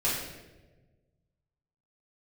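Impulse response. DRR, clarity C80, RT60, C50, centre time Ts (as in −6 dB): −9.5 dB, 4.0 dB, 1.2 s, 1.5 dB, 65 ms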